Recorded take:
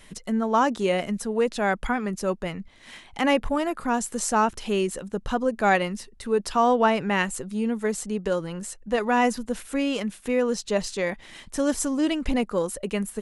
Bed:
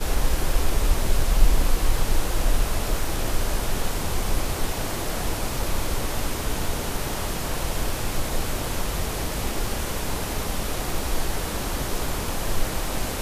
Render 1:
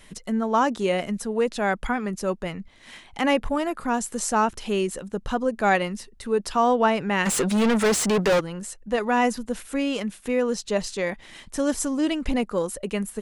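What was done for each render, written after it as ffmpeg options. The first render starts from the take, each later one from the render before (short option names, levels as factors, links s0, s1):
-filter_complex "[0:a]asplit=3[s0][s1][s2];[s0]afade=t=out:st=7.25:d=0.02[s3];[s1]asplit=2[s4][s5];[s5]highpass=f=720:p=1,volume=39.8,asoftclip=type=tanh:threshold=0.224[s6];[s4][s6]amix=inputs=2:normalize=0,lowpass=f=4700:p=1,volume=0.501,afade=t=in:st=7.25:d=0.02,afade=t=out:st=8.39:d=0.02[s7];[s2]afade=t=in:st=8.39:d=0.02[s8];[s3][s7][s8]amix=inputs=3:normalize=0"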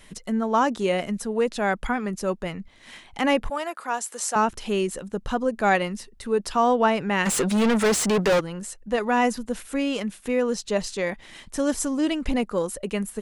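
-filter_complex "[0:a]asettb=1/sr,asplit=3[s0][s1][s2];[s0]atrim=end=3.504[s3];[s1]atrim=start=3.5:end=4.36,asetpts=PTS-STARTPTS,afade=t=in:d=0.004:c=qsin,afade=t=out:st=0.856:d=0.004:c=qsin,highpass=590[s4];[s2]atrim=start=4.356[s5];[s3][s4]acrossfade=d=0.004:c1=hsin:c2=qsin[s6];[s6][s5]acrossfade=d=0.004:c1=qsin:c2=hsin"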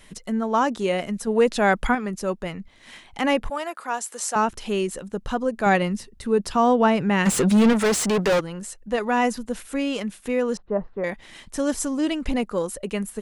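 -filter_complex "[0:a]asettb=1/sr,asplit=3[s0][s1][s2];[s0]atrim=end=1.274[s3];[s1]atrim=start=1.27:end=1.95,asetpts=PTS-STARTPTS,afade=t=in:d=0.004:c=qsin,afade=t=out:st=0.676:d=0.004:c=qsin,acontrast=25[s4];[s2]atrim=start=1.946[s5];[s3][s4]acrossfade=d=0.004:c1=hsin:c2=qsin[s6];[s6][s5]acrossfade=d=0.004:c1=qsin:c2=hsin,asettb=1/sr,asplit=3[s7][s8][s9];[s7]atrim=end=5.664[s10];[s8]atrim=start=5.66:end=7.73,asetpts=PTS-STARTPTS,afade=t=in:d=0.004:c=qsin,afade=t=out:st=2.066:d=0.004:c=qsin,equalizer=f=110:t=o:w=2.7:g=8[s11];[s9]atrim=start=7.726[s12];[s10][s11]acrossfade=d=0.004:c1=hsin:c2=qsin[s13];[s13][s12]acrossfade=d=0.004:c1=qsin:c2=hsin,asettb=1/sr,asplit=3[s14][s15][s16];[s14]atrim=end=10.574[s17];[s15]atrim=start=10.57:end=11.04,asetpts=PTS-STARTPTS,afade=t=in:d=0.004:c=qsin,afade=t=out:st=0.466:d=0.004:c=qsin,lowpass=f=1300:w=0.5412,lowpass=f=1300:w=1.3066[s18];[s16]atrim=start=11.036[s19];[s17][s18]acrossfade=d=0.004:c1=hsin:c2=qsin[s20];[s20][s19]acrossfade=d=0.004:c1=qsin:c2=hsin"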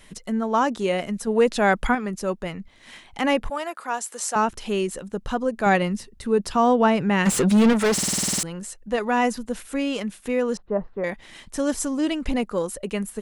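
-filter_complex "[0:a]asplit=11[s0][s1][s2][s3][s4][s5][s6][s7][s8][s9][s10];[s0]atrim=end=7.982[s11];[s1]atrim=start=7.928:end=7.982[s12];[s2]atrim=start=7.928:end=7.982[s13];[s3]atrim=start=7.928:end=7.982[s14];[s4]atrim=start=7.928:end=7.982[s15];[s5]atrim=start=7.928:end=7.982[s16];[s6]atrim=start=7.928:end=7.982[s17];[s7]atrim=start=7.928:end=7.982[s18];[s8]atrim=start=7.928:end=7.982[s19];[s9]atrim=start=7.928:end=7.982[s20];[s10]atrim=start=8.428[s21];[s11][s12]acrossfade=d=0.004:c1=hsin:c2=hsin[s22];[s22][s13]acrossfade=d=0.004:c1=hsin:c2=hsin[s23];[s23][s14]acrossfade=d=0.004:c1=hsin:c2=hsin[s24];[s24][s15]acrossfade=d=0.004:c1=hsin:c2=hsin[s25];[s25][s16]acrossfade=d=0.004:c1=hsin:c2=hsin[s26];[s26][s17]acrossfade=d=0.004:c1=hsin:c2=hsin[s27];[s27][s18]acrossfade=d=0.004:c1=hsin:c2=hsin[s28];[s28][s19]acrossfade=d=0.004:c1=hsin:c2=hsin[s29];[s29][s20]acrossfade=d=0.004:c1=hsin:c2=hsin[s30];[s30][s21]acrossfade=d=0.004:c1=hsin:c2=hsin"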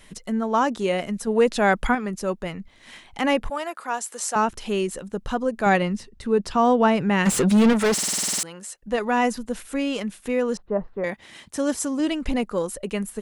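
-filter_complex "[0:a]asettb=1/sr,asplit=3[s0][s1][s2];[s0]atrim=end=5.814[s3];[s1]atrim=start=5.81:end=6.65,asetpts=PTS-STARTPTS,afade=t=in:d=0.004:c=qsin,afade=t=out:st=0.836:d=0.004:c=qsin,equalizer=f=14000:w=0.77:g=-12.5[s4];[s2]atrim=start=6.646[s5];[s3][s4]acrossfade=d=0.004:c1=hsin:c2=qsin[s6];[s6][s5]acrossfade=d=0.004:c1=qsin:c2=hsin,asettb=1/sr,asplit=3[s7][s8][s9];[s7]atrim=end=7.944[s10];[s8]atrim=start=7.94:end=8.83,asetpts=PTS-STARTPTS,afade=t=in:d=0.004:c=qsin,afade=t=out:st=0.886:d=0.004:c=qsin,highpass=f=540:p=1[s11];[s9]atrim=start=8.826[s12];[s10][s11]acrossfade=d=0.004:c1=hsin:c2=qsin[s13];[s13][s12]acrossfade=d=0.004:c1=qsin:c2=hsin,asettb=1/sr,asplit=3[s14][s15][s16];[s14]atrim=end=11.054[s17];[s15]atrim=start=11.05:end=12,asetpts=PTS-STARTPTS,afade=t=in:d=0.004:c=qsin,afade=t=out:st=0.946:d=0.004:c=qsin,highpass=76[s18];[s16]atrim=start=11.996[s19];[s17][s18]acrossfade=d=0.004:c1=hsin:c2=qsin[s20];[s20][s19]acrossfade=d=0.004:c1=qsin:c2=hsin"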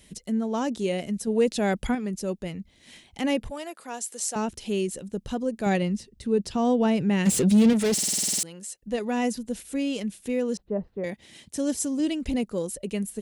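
-af "highpass=43,equalizer=f=1200:w=0.81:g=-14"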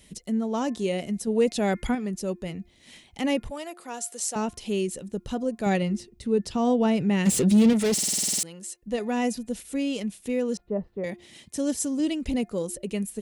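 -af "bandreject=f=1600:w=19,bandreject=f=352.6:t=h:w=4,bandreject=f=705.2:t=h:w=4,bandreject=f=1057.8:t=h:w=4,bandreject=f=1410.4:t=h:w=4,bandreject=f=1763:t=h:w=4,bandreject=f=2115.6:t=h:w=4,bandreject=f=2468.2:t=h:w=4"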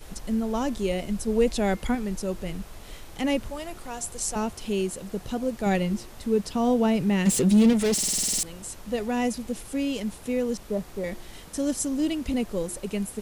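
-filter_complex "[1:a]volume=0.119[s0];[0:a][s0]amix=inputs=2:normalize=0"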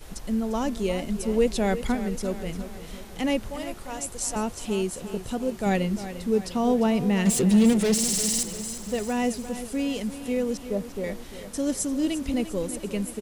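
-af "aecho=1:1:349|698|1047|1396|1745|2094:0.237|0.128|0.0691|0.0373|0.0202|0.0109"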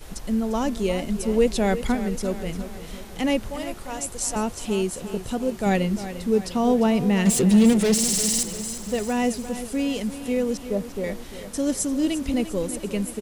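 -af "volume=1.33"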